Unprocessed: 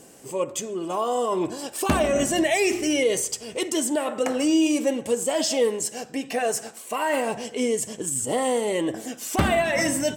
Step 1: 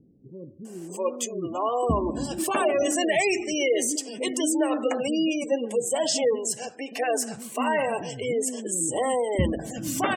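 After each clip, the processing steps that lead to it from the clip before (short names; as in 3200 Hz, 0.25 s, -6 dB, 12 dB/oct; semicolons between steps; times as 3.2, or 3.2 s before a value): spectral gate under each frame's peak -25 dB strong; bands offset in time lows, highs 0.65 s, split 300 Hz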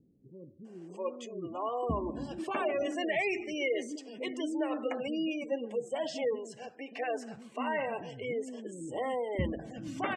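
LPF 3200 Hz 12 dB/oct; dynamic EQ 2200 Hz, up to +5 dB, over -46 dBFS, Q 3.8; gain -8.5 dB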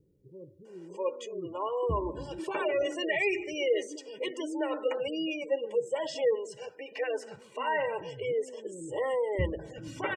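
comb 2.1 ms, depth 85%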